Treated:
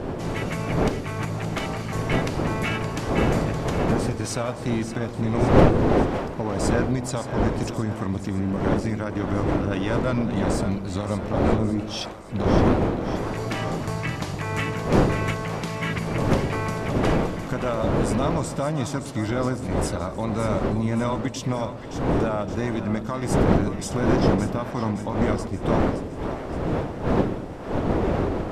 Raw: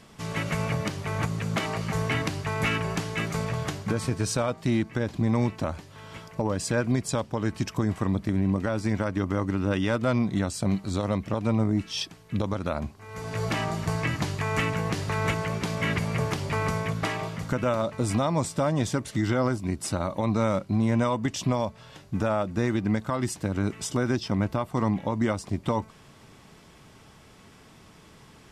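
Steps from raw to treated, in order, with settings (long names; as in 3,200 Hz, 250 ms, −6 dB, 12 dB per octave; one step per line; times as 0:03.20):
wind on the microphone 460 Hz −25 dBFS
echo with a time of its own for lows and highs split 560 Hz, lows 117 ms, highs 569 ms, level −10 dB
level −1 dB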